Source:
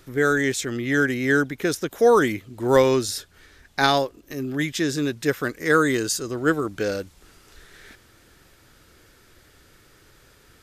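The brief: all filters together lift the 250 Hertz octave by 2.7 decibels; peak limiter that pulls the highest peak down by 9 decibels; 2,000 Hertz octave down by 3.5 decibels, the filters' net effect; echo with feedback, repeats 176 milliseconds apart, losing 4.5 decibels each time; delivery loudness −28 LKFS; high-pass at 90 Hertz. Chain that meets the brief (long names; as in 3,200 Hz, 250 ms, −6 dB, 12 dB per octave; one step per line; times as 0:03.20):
high-pass filter 90 Hz
parametric band 250 Hz +3.5 dB
parametric band 2,000 Hz −5 dB
brickwall limiter −13 dBFS
repeating echo 176 ms, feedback 60%, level −4.5 dB
level −5 dB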